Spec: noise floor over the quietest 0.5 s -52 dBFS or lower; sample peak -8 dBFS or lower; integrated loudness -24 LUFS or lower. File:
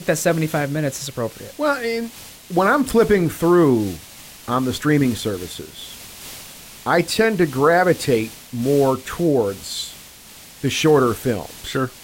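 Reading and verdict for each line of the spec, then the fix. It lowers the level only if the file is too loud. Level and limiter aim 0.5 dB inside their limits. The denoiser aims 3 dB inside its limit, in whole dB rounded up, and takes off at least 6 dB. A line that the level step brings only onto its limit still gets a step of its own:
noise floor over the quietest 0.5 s -42 dBFS: fail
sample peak -5.0 dBFS: fail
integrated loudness -19.5 LUFS: fail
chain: noise reduction 8 dB, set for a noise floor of -42 dBFS; trim -5 dB

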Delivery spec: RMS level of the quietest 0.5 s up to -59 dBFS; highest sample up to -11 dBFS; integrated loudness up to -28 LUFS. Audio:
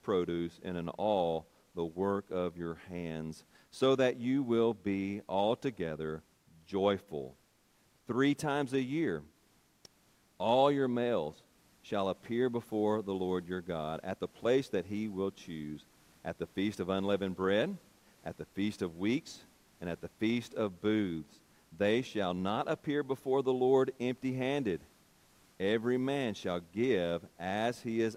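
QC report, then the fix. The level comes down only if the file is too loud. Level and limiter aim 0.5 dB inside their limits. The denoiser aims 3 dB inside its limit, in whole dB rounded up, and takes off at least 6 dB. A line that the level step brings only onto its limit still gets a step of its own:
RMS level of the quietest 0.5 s -69 dBFS: pass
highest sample -13.5 dBFS: pass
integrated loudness -34.0 LUFS: pass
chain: none needed

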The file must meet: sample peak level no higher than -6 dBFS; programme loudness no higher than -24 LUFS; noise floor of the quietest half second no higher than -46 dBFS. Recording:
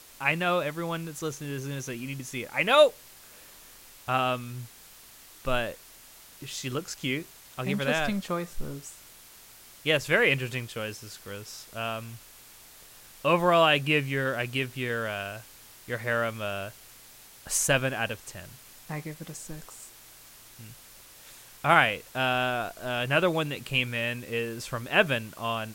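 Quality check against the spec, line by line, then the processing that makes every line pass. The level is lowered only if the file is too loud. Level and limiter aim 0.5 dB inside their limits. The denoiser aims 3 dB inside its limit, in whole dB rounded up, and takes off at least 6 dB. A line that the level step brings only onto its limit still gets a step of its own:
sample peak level -5.0 dBFS: fail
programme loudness -27.5 LUFS: pass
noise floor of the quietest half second -51 dBFS: pass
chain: peak limiter -6.5 dBFS

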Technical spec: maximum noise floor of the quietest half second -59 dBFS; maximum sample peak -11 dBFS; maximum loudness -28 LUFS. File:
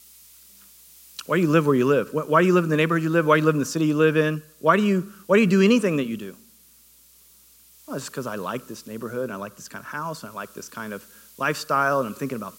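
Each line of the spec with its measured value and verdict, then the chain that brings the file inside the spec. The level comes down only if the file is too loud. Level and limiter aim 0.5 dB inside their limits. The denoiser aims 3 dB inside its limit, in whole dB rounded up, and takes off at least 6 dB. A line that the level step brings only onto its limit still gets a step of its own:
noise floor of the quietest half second -54 dBFS: fail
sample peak -5.0 dBFS: fail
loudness -22.0 LUFS: fail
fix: trim -6.5 dB

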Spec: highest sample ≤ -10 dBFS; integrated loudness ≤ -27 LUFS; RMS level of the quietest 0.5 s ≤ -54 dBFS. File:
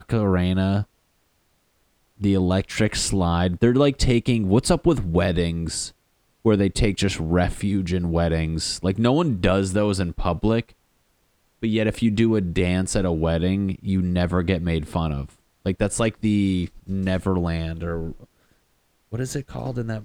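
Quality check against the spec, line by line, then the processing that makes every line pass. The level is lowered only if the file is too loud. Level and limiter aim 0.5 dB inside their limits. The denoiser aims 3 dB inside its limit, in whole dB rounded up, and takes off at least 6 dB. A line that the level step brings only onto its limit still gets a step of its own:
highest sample -4.5 dBFS: fail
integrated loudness -22.5 LUFS: fail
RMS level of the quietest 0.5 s -66 dBFS: pass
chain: trim -5 dB; peak limiter -10.5 dBFS

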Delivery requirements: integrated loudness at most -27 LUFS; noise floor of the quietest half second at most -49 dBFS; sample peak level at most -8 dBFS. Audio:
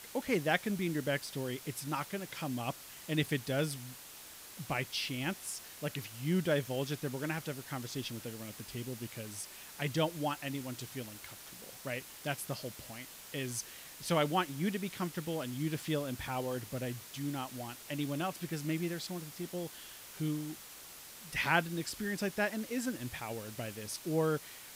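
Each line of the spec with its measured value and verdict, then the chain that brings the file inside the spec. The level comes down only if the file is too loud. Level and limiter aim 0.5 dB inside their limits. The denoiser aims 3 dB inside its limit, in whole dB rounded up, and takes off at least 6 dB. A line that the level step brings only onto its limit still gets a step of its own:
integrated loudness -37.0 LUFS: pass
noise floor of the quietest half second -51 dBFS: pass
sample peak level -13.5 dBFS: pass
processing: none needed

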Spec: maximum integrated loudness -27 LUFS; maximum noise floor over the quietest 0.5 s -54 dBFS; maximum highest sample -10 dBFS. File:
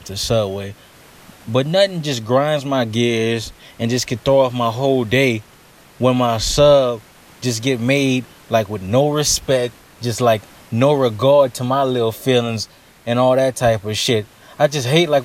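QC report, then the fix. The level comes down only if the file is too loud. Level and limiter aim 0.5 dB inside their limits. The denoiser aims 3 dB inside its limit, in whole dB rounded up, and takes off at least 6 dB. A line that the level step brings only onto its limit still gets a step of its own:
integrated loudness -17.5 LUFS: fail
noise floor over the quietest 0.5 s -47 dBFS: fail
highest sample -1.5 dBFS: fail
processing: trim -10 dB

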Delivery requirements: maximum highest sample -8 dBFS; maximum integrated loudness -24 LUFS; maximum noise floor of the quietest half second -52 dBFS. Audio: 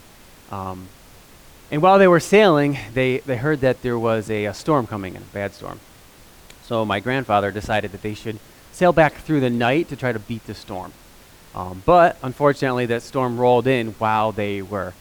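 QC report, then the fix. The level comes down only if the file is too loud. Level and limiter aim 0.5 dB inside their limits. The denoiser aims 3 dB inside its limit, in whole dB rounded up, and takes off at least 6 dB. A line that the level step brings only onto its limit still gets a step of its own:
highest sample -3.5 dBFS: fail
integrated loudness -19.5 LUFS: fail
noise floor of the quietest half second -47 dBFS: fail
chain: noise reduction 6 dB, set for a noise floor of -47 dBFS; trim -5 dB

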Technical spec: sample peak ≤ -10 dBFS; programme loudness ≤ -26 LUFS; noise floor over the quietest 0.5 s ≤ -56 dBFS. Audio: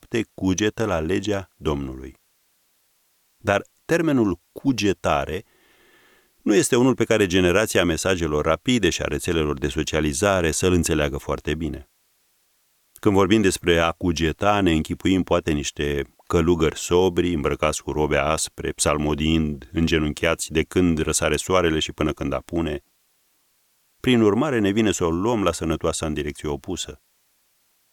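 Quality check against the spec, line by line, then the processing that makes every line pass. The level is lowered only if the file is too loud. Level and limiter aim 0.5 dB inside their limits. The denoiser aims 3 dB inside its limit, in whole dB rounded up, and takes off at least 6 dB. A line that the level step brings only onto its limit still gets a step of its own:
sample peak -4.0 dBFS: fail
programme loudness -22.0 LUFS: fail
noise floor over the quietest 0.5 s -65 dBFS: pass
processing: trim -4.5 dB; peak limiter -10.5 dBFS

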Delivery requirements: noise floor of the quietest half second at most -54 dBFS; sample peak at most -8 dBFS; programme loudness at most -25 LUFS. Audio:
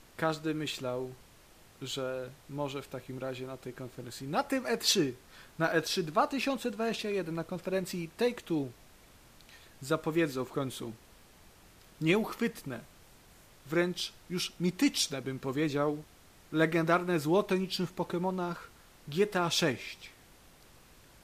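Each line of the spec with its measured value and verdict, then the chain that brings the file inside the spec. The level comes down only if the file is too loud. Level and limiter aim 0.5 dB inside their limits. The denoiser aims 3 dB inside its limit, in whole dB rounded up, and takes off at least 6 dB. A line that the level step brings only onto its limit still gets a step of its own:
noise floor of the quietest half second -58 dBFS: pass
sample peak -14.0 dBFS: pass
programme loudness -32.5 LUFS: pass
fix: none needed

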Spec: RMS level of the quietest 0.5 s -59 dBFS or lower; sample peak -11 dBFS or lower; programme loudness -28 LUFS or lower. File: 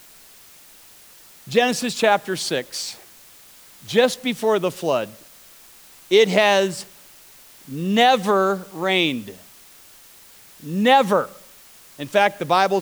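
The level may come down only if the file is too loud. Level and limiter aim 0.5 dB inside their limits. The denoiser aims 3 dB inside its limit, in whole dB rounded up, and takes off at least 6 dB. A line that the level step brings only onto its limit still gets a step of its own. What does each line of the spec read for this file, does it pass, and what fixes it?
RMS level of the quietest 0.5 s -47 dBFS: fail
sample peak -3.5 dBFS: fail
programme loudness -19.5 LUFS: fail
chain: noise reduction 6 dB, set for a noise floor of -47 dBFS; trim -9 dB

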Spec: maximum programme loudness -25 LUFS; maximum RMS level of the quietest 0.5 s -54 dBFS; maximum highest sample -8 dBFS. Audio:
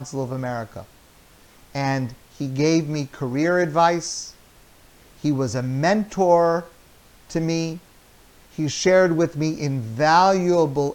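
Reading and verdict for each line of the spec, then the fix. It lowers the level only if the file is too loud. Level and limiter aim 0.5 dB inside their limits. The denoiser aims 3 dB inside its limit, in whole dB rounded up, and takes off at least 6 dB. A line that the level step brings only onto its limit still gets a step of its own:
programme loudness -21.5 LUFS: fail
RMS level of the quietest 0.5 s -51 dBFS: fail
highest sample -4.5 dBFS: fail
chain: trim -4 dB

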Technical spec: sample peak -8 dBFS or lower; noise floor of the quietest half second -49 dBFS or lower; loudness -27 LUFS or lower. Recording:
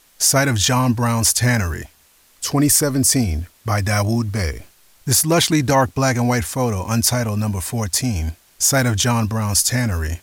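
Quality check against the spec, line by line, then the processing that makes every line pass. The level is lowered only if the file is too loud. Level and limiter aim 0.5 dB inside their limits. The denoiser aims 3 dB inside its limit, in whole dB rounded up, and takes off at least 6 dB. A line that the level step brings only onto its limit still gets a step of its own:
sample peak -4.0 dBFS: fail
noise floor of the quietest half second -54 dBFS: pass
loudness -18.0 LUFS: fail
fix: trim -9.5 dB

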